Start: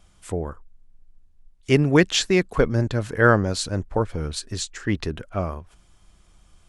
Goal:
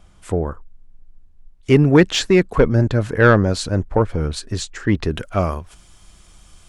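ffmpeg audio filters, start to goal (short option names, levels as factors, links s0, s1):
-af "acontrast=76,asetnsamples=n=441:p=0,asendcmd='5.11 highshelf g 6.5',highshelf=f=2600:g=-7.5"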